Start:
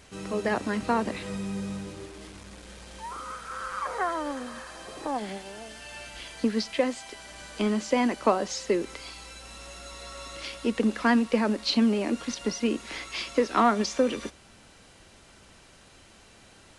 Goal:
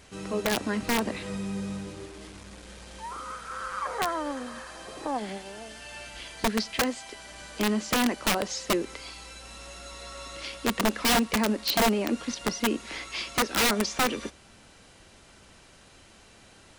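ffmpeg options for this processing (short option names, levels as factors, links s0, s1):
-af "aeval=exprs='(mod(7.5*val(0)+1,2)-1)/7.5':c=same"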